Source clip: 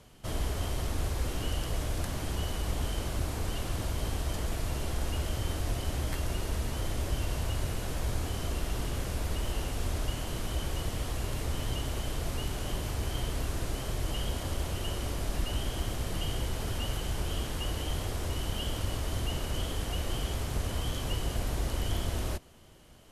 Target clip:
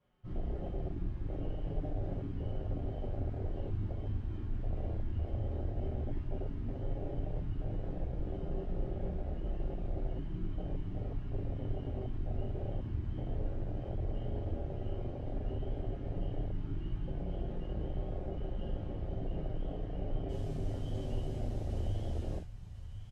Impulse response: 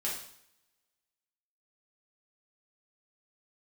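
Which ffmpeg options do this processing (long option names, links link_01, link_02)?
-filter_complex "[0:a]aeval=exprs='0.133*(cos(1*acos(clip(val(0)/0.133,-1,1)))-cos(1*PI/2))+0.0075*(cos(2*acos(clip(val(0)/0.133,-1,1)))-cos(2*PI/2))+0.0119*(cos(4*acos(clip(val(0)/0.133,-1,1)))-cos(4*PI/2))+0.015*(cos(5*acos(clip(val(0)/0.133,-1,1)))-cos(5*PI/2))+0.00944*(cos(6*acos(clip(val(0)/0.133,-1,1)))-cos(6*PI/2))':channel_layout=same,asetnsamples=nb_out_samples=441:pad=0,asendcmd='20.29 lowpass f 7900',lowpass=2200,aecho=1:1:1058|2116:0.316|0.0538[link_01];[1:a]atrim=start_sample=2205,atrim=end_sample=4410[link_02];[link_01][link_02]afir=irnorm=-1:irlink=0,flanger=delay=5.5:depth=3.7:regen=-41:speed=0.11:shape=sinusoidal,afwtdn=0.0316,volume=-3.5dB"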